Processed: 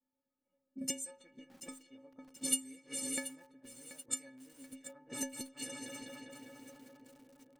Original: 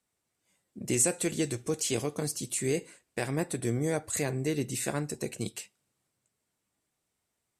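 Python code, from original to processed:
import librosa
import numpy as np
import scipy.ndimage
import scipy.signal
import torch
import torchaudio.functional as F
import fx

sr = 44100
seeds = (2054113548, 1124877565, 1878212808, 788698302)

p1 = x + fx.echo_heads(x, sr, ms=200, heads='all three', feedback_pct=65, wet_db=-17, dry=0)
p2 = fx.gate_flip(p1, sr, shuts_db=-22.0, range_db=-25)
p3 = fx.stiff_resonator(p2, sr, f0_hz=260.0, decay_s=0.38, stiffness=0.03)
p4 = fx.env_lowpass(p3, sr, base_hz=550.0, full_db=-54.0)
p5 = fx.tilt_eq(p4, sr, slope=1.5)
p6 = fx.echo_crushed(p5, sr, ms=732, feedback_pct=55, bits=11, wet_db=-13.5)
y = p6 * 10.0 ** (16.5 / 20.0)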